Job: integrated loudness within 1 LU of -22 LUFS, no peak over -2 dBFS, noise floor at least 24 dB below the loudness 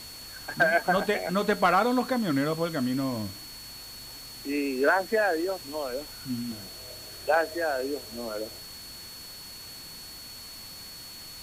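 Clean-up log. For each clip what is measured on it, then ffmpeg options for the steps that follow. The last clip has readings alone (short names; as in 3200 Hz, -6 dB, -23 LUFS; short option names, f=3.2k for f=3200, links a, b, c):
steady tone 4400 Hz; tone level -43 dBFS; noise floor -43 dBFS; noise floor target -52 dBFS; loudness -27.5 LUFS; peak -12.5 dBFS; loudness target -22.0 LUFS
-> -af "bandreject=f=4.4k:w=30"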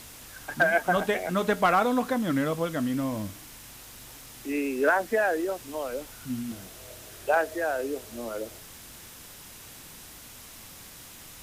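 steady tone none; noise floor -47 dBFS; noise floor target -52 dBFS
-> -af "afftdn=nr=6:nf=-47"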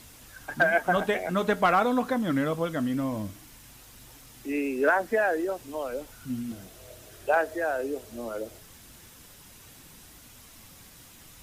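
noise floor -51 dBFS; noise floor target -52 dBFS
-> -af "afftdn=nr=6:nf=-51"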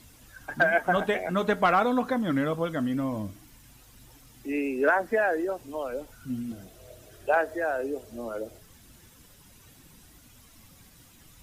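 noise floor -55 dBFS; loudness -27.5 LUFS; peak -12.5 dBFS; loudness target -22.0 LUFS
-> -af "volume=5.5dB"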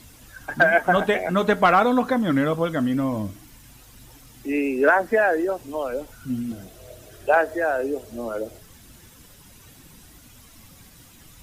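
loudness -22.0 LUFS; peak -7.0 dBFS; noise floor -50 dBFS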